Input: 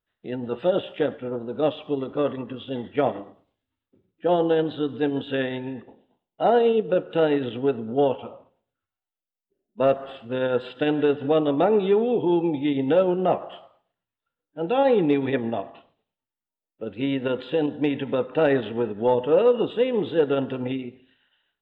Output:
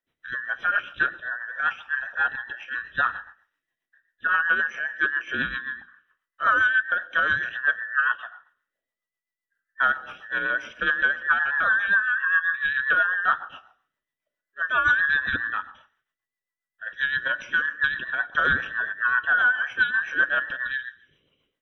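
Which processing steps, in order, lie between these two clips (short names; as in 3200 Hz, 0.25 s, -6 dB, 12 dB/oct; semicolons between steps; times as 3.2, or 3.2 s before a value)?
band inversion scrambler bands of 2000 Hz; rotary speaker horn 7.5 Hz; gain +1.5 dB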